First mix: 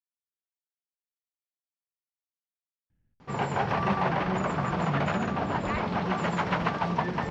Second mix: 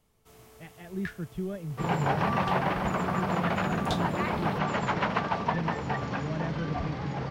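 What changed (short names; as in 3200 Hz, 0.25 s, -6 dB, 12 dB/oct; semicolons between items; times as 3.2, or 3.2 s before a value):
speech: entry -2.90 s; first sound: unmuted; second sound: entry -1.50 s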